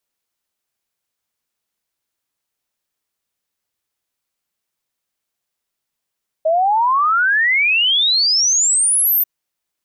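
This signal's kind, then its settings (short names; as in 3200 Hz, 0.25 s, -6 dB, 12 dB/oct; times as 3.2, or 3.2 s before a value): log sweep 620 Hz -> 14000 Hz 2.79 s -12 dBFS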